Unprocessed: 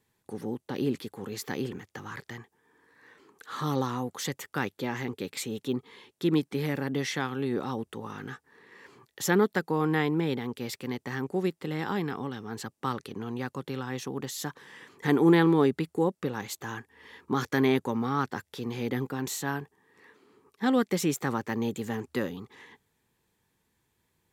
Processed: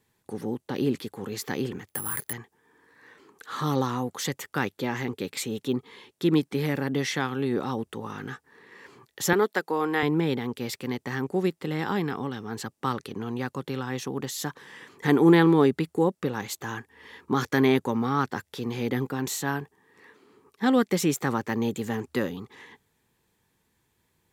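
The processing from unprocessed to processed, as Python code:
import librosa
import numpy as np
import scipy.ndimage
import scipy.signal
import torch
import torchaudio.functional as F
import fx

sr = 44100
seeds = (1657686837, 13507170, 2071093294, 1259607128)

y = fx.resample_bad(x, sr, factor=4, down='filtered', up='zero_stuff', at=(1.88, 2.33))
y = fx.highpass(y, sr, hz=350.0, slope=12, at=(9.33, 10.03))
y = y * librosa.db_to_amplitude(3.0)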